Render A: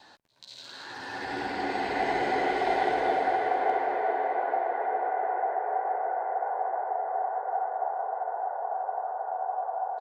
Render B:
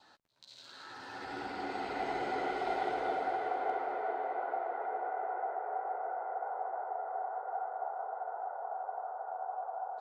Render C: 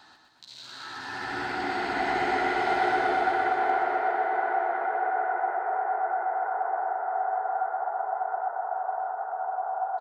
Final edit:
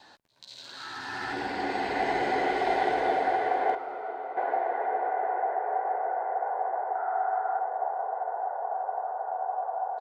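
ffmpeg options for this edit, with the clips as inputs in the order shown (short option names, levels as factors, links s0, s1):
-filter_complex "[2:a]asplit=2[s0][s1];[0:a]asplit=4[s2][s3][s4][s5];[s2]atrim=end=0.772[s6];[s0]atrim=start=0.768:end=1.332[s7];[s3]atrim=start=1.328:end=3.752[s8];[1:a]atrim=start=3.748:end=4.372[s9];[s4]atrim=start=4.368:end=6.952[s10];[s1]atrim=start=6.948:end=7.592[s11];[s5]atrim=start=7.588[s12];[s6][s7]acrossfade=d=0.004:c1=hsin:c2=hsin[s13];[s13][s8]acrossfade=d=0.004:c1=hsin:c2=hsin[s14];[s14][s9]acrossfade=d=0.004:c1=hsin:c2=hsin[s15];[s15][s10]acrossfade=d=0.004:c1=hsin:c2=hsin[s16];[s16][s11]acrossfade=d=0.004:c1=hsin:c2=hsin[s17];[s17][s12]acrossfade=d=0.004:c1=hsin:c2=hsin"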